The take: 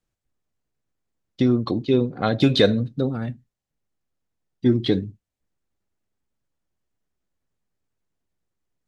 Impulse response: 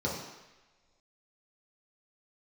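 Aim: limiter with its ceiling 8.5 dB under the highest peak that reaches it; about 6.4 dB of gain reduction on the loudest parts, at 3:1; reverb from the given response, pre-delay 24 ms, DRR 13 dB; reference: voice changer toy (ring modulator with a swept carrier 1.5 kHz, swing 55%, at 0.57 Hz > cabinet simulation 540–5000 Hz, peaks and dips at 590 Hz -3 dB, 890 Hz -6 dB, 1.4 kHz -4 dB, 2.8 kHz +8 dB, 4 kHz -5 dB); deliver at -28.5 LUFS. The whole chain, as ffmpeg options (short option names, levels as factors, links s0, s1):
-filter_complex "[0:a]acompressor=threshold=0.1:ratio=3,alimiter=limit=0.15:level=0:latency=1,asplit=2[s0][s1];[1:a]atrim=start_sample=2205,adelay=24[s2];[s1][s2]afir=irnorm=-1:irlink=0,volume=0.0944[s3];[s0][s3]amix=inputs=2:normalize=0,aeval=exprs='val(0)*sin(2*PI*1500*n/s+1500*0.55/0.57*sin(2*PI*0.57*n/s))':c=same,highpass=540,equalizer=f=590:t=q:w=4:g=-3,equalizer=f=890:t=q:w=4:g=-6,equalizer=f=1400:t=q:w=4:g=-4,equalizer=f=2800:t=q:w=4:g=8,equalizer=f=4000:t=q:w=4:g=-5,lowpass=f=5000:w=0.5412,lowpass=f=5000:w=1.3066,volume=0.944"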